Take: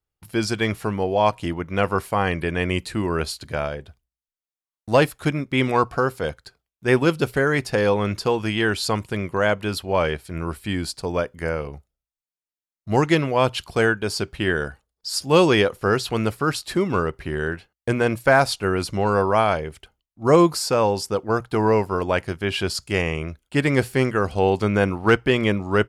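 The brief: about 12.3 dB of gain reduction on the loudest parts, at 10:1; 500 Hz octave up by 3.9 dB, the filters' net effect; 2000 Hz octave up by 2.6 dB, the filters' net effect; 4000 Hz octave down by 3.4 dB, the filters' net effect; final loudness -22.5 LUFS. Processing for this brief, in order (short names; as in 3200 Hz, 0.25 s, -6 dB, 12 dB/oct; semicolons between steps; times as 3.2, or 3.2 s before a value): bell 500 Hz +4.5 dB; bell 2000 Hz +4.5 dB; bell 4000 Hz -6.5 dB; compressor 10:1, threshold -20 dBFS; gain +4 dB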